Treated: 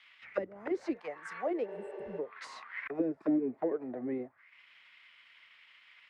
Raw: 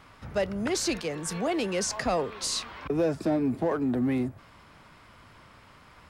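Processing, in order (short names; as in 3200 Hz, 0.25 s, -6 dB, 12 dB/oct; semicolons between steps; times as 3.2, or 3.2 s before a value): bell 2000 Hz +12.5 dB 0.64 oct; transient shaper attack +2 dB, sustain -8 dB; auto-wah 290–3500 Hz, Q 3.3, down, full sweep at -20.5 dBFS; spectral repair 1.71–2.16, 230–7600 Hz before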